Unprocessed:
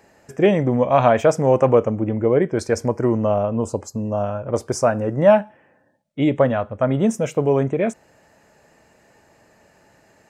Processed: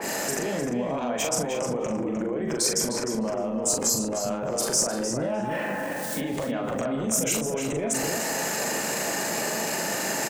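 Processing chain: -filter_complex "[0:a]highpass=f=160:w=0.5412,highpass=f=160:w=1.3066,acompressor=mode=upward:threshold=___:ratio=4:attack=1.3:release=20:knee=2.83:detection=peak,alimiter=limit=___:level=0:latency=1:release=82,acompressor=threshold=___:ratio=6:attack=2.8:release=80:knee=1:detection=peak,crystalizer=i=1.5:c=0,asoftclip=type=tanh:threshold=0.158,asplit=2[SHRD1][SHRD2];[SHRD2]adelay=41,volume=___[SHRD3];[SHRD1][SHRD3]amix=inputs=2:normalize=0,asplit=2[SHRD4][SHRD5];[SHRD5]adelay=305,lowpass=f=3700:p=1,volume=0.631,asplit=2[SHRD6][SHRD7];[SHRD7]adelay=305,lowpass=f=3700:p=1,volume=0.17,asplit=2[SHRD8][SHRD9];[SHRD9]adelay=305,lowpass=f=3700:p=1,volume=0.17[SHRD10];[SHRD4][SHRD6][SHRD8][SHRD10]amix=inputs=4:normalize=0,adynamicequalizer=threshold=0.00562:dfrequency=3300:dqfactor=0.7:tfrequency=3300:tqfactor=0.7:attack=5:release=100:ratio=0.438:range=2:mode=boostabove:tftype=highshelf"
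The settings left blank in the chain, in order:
0.0891, 0.224, 0.0398, 0.631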